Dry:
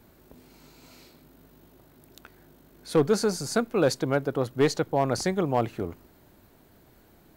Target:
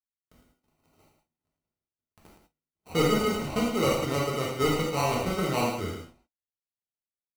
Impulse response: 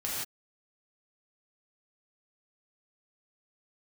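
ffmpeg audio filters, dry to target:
-filter_complex "[0:a]acrusher=samples=26:mix=1:aa=0.000001,agate=range=0.00158:threshold=0.00355:ratio=16:detection=peak,asetnsamples=n=441:p=0,asendcmd='2.9 highshelf g -5',highshelf=f=8300:g=7,aecho=1:1:109:0.447[s0];[1:a]atrim=start_sample=2205,afade=t=out:st=0.14:d=0.01,atrim=end_sample=6615[s1];[s0][s1]afir=irnorm=-1:irlink=0,volume=0.596"

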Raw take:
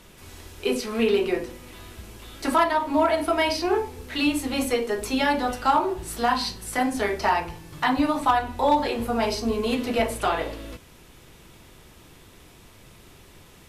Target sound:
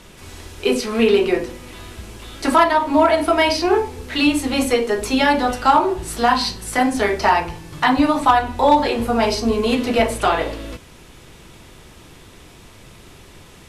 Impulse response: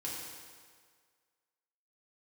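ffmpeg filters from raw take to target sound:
-af "lowpass=11000,volume=2.11"

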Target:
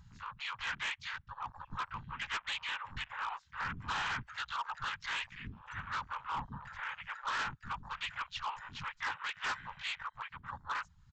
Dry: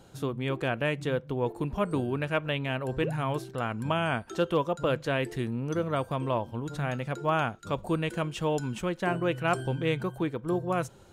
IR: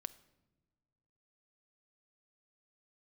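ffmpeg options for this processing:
-filter_complex "[0:a]afftfilt=real='re*(1-between(b*sr/4096,110,820))':imag='im*(1-between(b*sr/4096,110,820))':win_size=4096:overlap=0.75,afftfilt=real='hypot(re,im)*cos(2*PI*random(0))':imag='hypot(re,im)*sin(2*PI*random(1))':win_size=512:overlap=0.75,asplit=2[s0][s1];[s1]acompressor=mode=upward:threshold=0.00794:ratio=2.5,volume=0.891[s2];[s0][s2]amix=inputs=2:normalize=0,asplit=3[s3][s4][s5];[s4]asetrate=52444,aresample=44100,atempo=0.840896,volume=0.447[s6];[s5]asetrate=55563,aresample=44100,atempo=0.793701,volume=0.631[s7];[s3][s6][s7]amix=inputs=3:normalize=0,afwtdn=0.00562,aresample=16000,asoftclip=type=hard:threshold=0.0355,aresample=44100,volume=0.708"

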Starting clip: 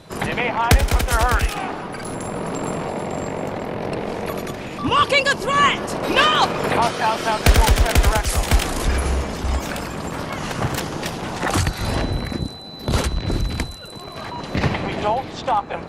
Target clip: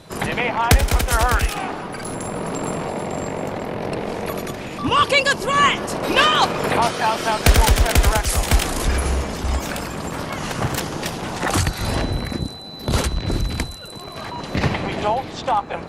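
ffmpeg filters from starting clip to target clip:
-af "equalizer=f=12000:t=o:w=1.8:g=3"

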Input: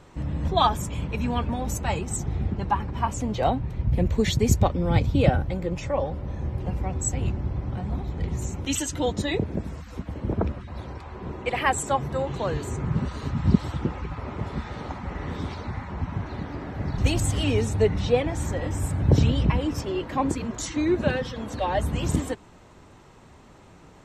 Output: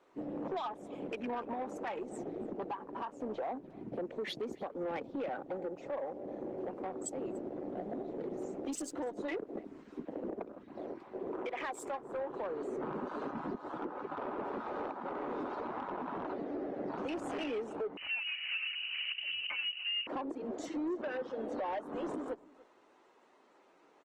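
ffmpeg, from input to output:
-filter_complex "[0:a]afwtdn=0.02,highpass=f=310:w=0.5412,highpass=f=310:w=1.3066,aemphasis=mode=reproduction:type=50fm,acompressor=threshold=0.01:ratio=2,alimiter=level_in=2.37:limit=0.0631:level=0:latency=1:release=186,volume=0.422,asoftclip=type=tanh:threshold=0.015,asplit=2[s0][s1];[s1]adelay=291.5,volume=0.0891,highshelf=f=4000:g=-6.56[s2];[s0][s2]amix=inputs=2:normalize=0,asettb=1/sr,asplit=3[s3][s4][s5];[s3]atrim=end=17.974[s6];[s4]atrim=start=17.97:end=20.07,asetpts=PTS-STARTPTS,afade=t=in:d=0.004:c=qsin,afade=t=out:st=2.096:d=0.004:c=qsin,lowpass=f=2700:t=q:w=0.5098,lowpass=f=2700:t=q:w=0.6013,lowpass=f=2700:t=q:w=0.9,lowpass=f=2700:t=q:w=2.563,afreqshift=-3200[s7];[s5]atrim=start=20.066[s8];[s6][s7]acrossfade=d=0.004:c1=hsin:c2=qsin[s9];[s9][s8]acrossfade=d=0.004:c1=qsin:c2=hsin,volume=1.88" -ar 48000 -c:a libopus -b:a 20k

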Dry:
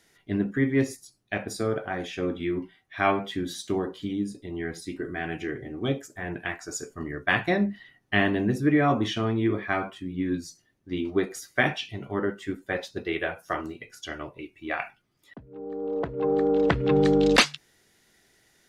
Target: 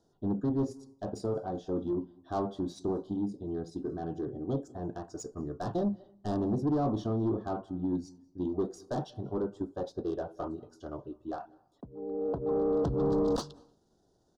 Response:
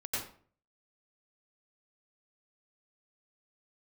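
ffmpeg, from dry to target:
-filter_complex "[0:a]atempo=1.3,asoftclip=type=tanh:threshold=0.0708,asuperstop=centerf=2200:order=4:qfactor=0.56,asplit=2[s0][s1];[1:a]atrim=start_sample=2205,adelay=91[s2];[s1][s2]afir=irnorm=-1:irlink=0,volume=0.0447[s3];[s0][s3]amix=inputs=2:normalize=0,adynamicsmooth=sensitivity=3:basefreq=3700,volume=0.891"

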